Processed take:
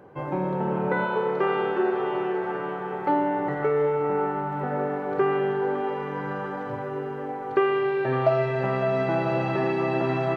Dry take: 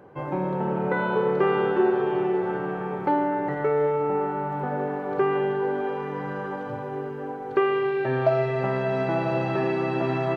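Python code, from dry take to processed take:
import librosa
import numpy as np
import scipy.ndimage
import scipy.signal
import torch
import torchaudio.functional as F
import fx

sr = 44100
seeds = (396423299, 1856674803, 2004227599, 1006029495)

y = fx.low_shelf(x, sr, hz=280.0, db=-8.5, at=(1.05, 3.09))
y = fx.echo_wet_bandpass(y, sr, ms=557, feedback_pct=66, hz=1400.0, wet_db=-8.5)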